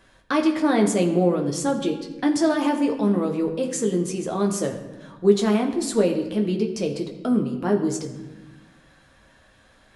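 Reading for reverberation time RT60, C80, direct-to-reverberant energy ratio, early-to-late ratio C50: 1.2 s, 10.5 dB, 1.5 dB, 9.0 dB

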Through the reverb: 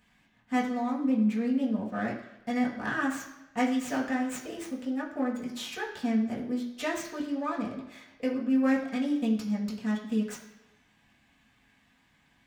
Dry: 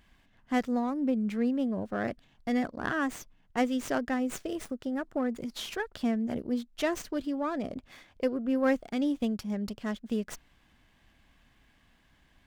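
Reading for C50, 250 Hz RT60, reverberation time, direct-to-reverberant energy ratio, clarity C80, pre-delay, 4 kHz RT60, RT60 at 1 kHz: 7.0 dB, 0.90 s, 1.0 s, −5.0 dB, 9.5 dB, 3 ms, 0.95 s, 1.0 s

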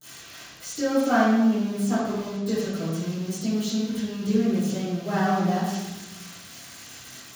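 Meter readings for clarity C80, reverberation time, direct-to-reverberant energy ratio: 2.0 dB, 1.1 s, −19.5 dB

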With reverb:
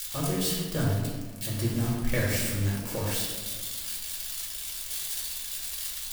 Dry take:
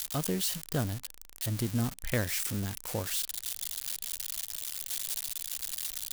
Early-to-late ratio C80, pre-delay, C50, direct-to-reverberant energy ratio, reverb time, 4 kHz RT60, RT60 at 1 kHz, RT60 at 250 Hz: 3.5 dB, 4 ms, 0.5 dB, −4.5 dB, 1.5 s, 0.85 s, 1.3 s, 2.3 s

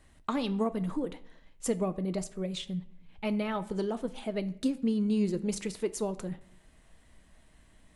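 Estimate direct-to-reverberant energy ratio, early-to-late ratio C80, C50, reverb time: 11.0 dB, 20.0 dB, 17.5 dB, 0.70 s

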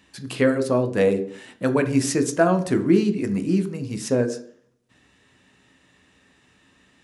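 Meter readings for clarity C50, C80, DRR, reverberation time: 12.5 dB, 16.0 dB, 7.5 dB, 0.55 s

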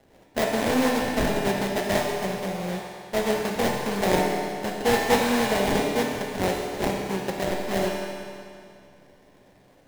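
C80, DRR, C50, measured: 2.0 dB, −1.5 dB, 0.5 dB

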